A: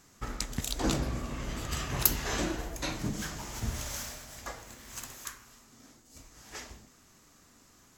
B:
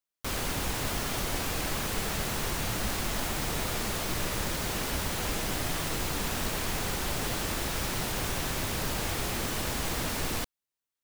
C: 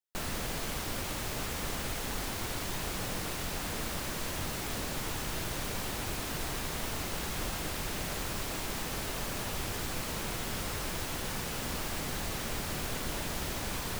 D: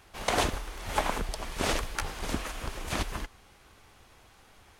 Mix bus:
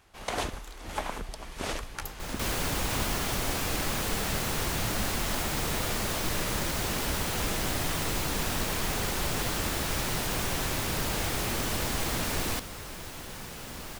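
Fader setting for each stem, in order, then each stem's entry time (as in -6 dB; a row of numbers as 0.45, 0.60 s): -18.5, +1.0, -5.0, -5.0 dB; 0.00, 2.15, 2.05, 0.00 s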